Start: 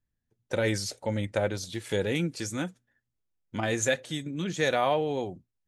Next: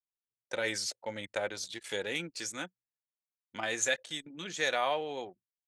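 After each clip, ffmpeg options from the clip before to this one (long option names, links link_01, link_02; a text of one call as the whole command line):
ffmpeg -i in.wav -af "highpass=frequency=1100:poles=1,anlmdn=0.0251,lowpass=10000" out.wav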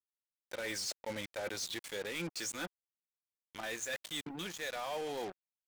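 ffmpeg -i in.wav -af "areverse,acompressor=threshold=-39dB:ratio=16,areverse,acrusher=bits=7:mix=0:aa=0.5,asoftclip=type=tanh:threshold=-37.5dB,volume=6dB" out.wav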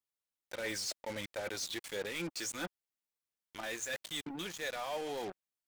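ffmpeg -i in.wav -af "aphaser=in_gain=1:out_gain=1:delay=3.6:decay=0.22:speed=1.5:type=sinusoidal" out.wav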